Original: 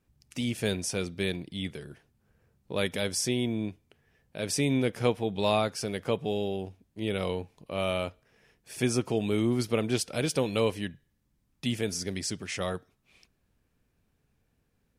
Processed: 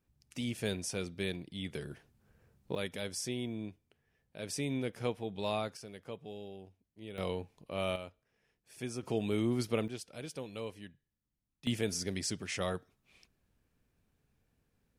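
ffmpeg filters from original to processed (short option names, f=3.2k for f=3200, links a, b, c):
-af "asetnsamples=n=441:p=0,asendcmd='1.73 volume volume 0.5dB;2.75 volume volume -9dB;5.77 volume volume -15.5dB;7.18 volume volume -5dB;7.96 volume volume -13dB;9.03 volume volume -5dB;9.88 volume volume -15dB;11.67 volume volume -3dB',volume=-6dB"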